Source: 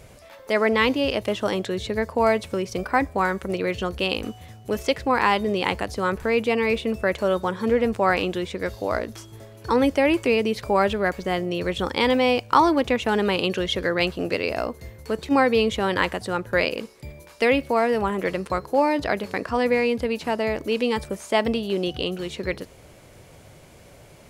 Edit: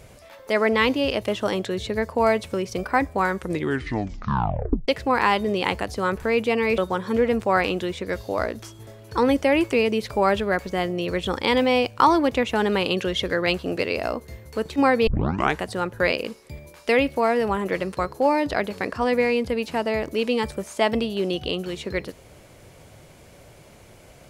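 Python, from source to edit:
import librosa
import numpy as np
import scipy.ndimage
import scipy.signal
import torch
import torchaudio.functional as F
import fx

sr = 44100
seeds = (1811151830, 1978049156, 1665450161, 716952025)

y = fx.edit(x, sr, fx.tape_stop(start_s=3.37, length_s=1.51),
    fx.cut(start_s=6.78, length_s=0.53),
    fx.tape_start(start_s=15.6, length_s=0.53), tone=tone)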